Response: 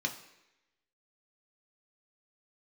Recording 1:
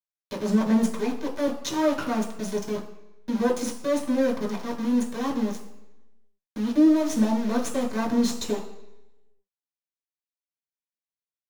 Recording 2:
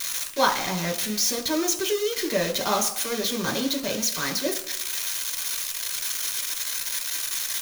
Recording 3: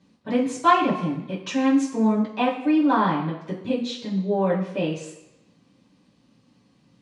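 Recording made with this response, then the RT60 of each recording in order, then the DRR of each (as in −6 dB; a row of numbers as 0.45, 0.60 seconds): 2; 0.90, 0.90, 0.90 seconds; −2.0, 2.0, −10.5 decibels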